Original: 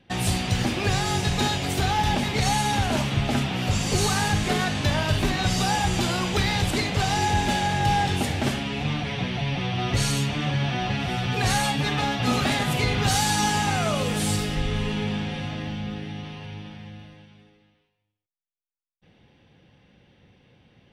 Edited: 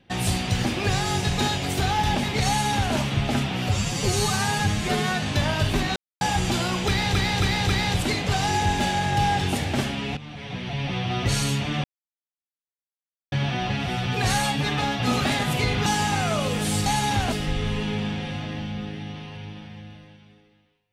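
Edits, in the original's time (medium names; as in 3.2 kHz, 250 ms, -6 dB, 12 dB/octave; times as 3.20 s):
2.48–2.94 s: copy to 14.41 s
3.69–4.71 s: stretch 1.5×
5.45–5.70 s: mute
6.37–6.64 s: loop, 4 plays
8.85–9.63 s: fade in, from -16.5 dB
10.52 s: insert silence 1.48 s
13.06–13.41 s: delete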